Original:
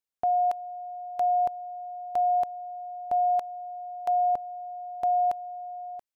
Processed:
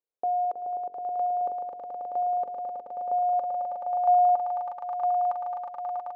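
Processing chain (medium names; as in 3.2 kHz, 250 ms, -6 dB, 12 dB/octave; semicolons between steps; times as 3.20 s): de-hum 45.01 Hz, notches 11; dynamic bell 1.2 kHz, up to +7 dB, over -50 dBFS, Q 4.2; echo with a slow build-up 107 ms, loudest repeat 8, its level -10 dB; in parallel at +2 dB: peak limiter -28 dBFS, peak gain reduction 10 dB; on the sum: band-pass sweep 460 Hz -> 1 kHz, 2.98–4.88 s; trim +1.5 dB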